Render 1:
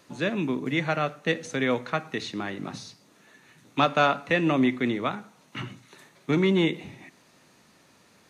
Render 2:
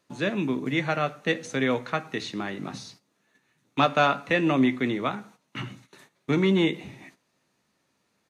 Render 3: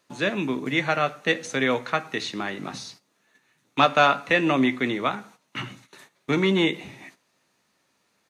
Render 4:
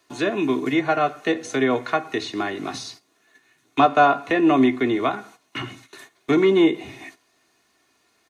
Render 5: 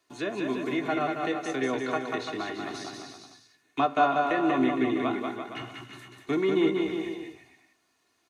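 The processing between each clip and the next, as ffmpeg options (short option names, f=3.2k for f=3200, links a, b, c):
-filter_complex "[0:a]agate=range=-14dB:threshold=-51dB:ratio=16:detection=peak,asplit=2[a][b];[b]adelay=15,volume=-13dB[c];[a][c]amix=inputs=2:normalize=0"
-af "lowshelf=f=380:g=-7,volume=4.5dB"
-filter_complex "[0:a]aecho=1:1:2.8:0.63,acrossover=split=220|1200[a][b][c];[c]acompressor=threshold=-34dB:ratio=4[d];[a][b][d]amix=inputs=3:normalize=0,volume=3.5dB"
-af "aecho=1:1:190|342|463.6|560.9|638.7:0.631|0.398|0.251|0.158|0.1,volume=-9dB"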